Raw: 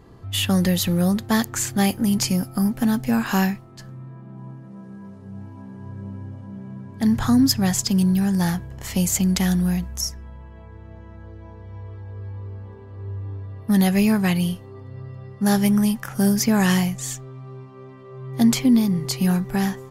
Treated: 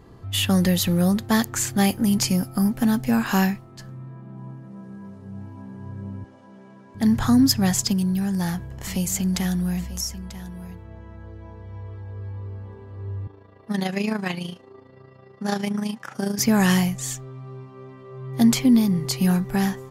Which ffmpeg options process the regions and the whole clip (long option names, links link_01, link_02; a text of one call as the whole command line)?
ffmpeg -i in.wav -filter_complex "[0:a]asettb=1/sr,asplit=3[link_01][link_02][link_03];[link_01]atrim=end=6.244[link_04];[link_02]atrim=start=6.24:end=6.95,asetpts=PTS-STARTPTS,afade=type=in:duration=0.004:curve=qsin,afade=type=out:start_time=0.706:duration=0.004:curve=qsin,highpass=370,lowpass=6600,aemphasis=mode=production:type=cd[link_05];[link_03]atrim=start=6.946[link_06];[link_04][link_05]acrossfade=duration=0.004:curve1=hsin:curve2=qsin[link_07];[link_07][link_06]acrossfade=duration=0.004:curve1=qsin:curve2=hsin,asettb=1/sr,asplit=3[link_08][link_09][link_10];[link_08]atrim=end=7.934[link_11];[link_09]atrim=start=7.93:end=10.85,asetpts=PTS-STARTPTS,afade=type=in:duration=0.004:curve=qsin,afade=type=out:start_time=2.916:duration=0.004:curve=qsin,acompressor=threshold=-27dB:ratio=1.5:attack=3.2:release=140:knee=1:detection=peak,aecho=1:1:941:0.2,atrim=end_sample=128772[link_12];[link_10]atrim=start=10.846[link_13];[link_11][link_12]acrossfade=duration=0.004:curve1=hsin:curve2=qsin[link_14];[link_14][link_13]acrossfade=duration=0.004:curve1=qsin:curve2=hsin,asettb=1/sr,asplit=3[link_15][link_16][link_17];[link_15]atrim=end=13.274[link_18];[link_16]atrim=start=13.27:end=16.39,asetpts=PTS-STARTPTS,afade=type=in:duration=0.004:curve=qsin,afade=type=out:start_time=3.116:duration=0.004:curve=qsin,highpass=260,lowpass=6500,tremolo=f=27:d=0.621[link_19];[link_17]atrim=start=16.386[link_20];[link_18][link_19]acrossfade=duration=0.004:curve1=hsin:curve2=qsin[link_21];[link_21][link_20]acrossfade=duration=0.004:curve1=qsin:curve2=hsin" out.wav